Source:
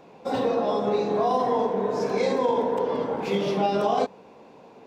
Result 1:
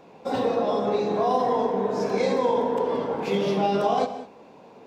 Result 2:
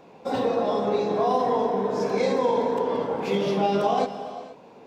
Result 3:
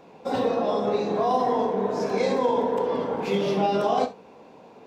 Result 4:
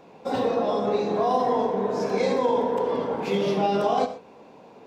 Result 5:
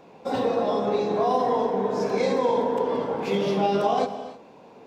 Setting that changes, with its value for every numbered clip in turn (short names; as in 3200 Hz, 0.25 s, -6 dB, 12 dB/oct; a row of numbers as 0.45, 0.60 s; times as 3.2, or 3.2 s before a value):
non-linear reverb, gate: 230, 510, 90, 150, 340 ms